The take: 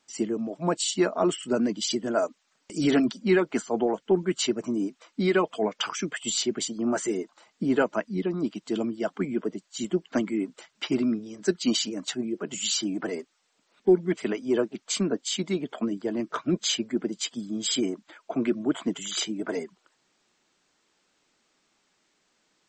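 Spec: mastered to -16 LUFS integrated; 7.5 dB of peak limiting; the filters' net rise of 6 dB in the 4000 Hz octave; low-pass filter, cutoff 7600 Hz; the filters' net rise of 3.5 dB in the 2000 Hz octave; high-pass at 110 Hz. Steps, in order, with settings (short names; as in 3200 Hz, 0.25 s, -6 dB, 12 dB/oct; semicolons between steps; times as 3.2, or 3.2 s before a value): HPF 110 Hz; LPF 7600 Hz; bell 2000 Hz +3 dB; bell 4000 Hz +7 dB; gain +12 dB; limiter -4.5 dBFS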